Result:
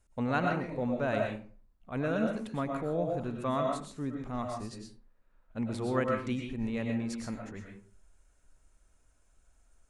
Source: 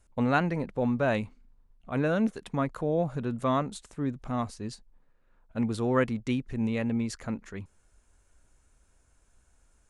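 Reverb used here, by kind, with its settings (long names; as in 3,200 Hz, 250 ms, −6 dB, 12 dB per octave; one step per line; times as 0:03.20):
comb and all-pass reverb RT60 0.42 s, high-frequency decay 0.6×, pre-delay 75 ms, DRR 1 dB
level −5.5 dB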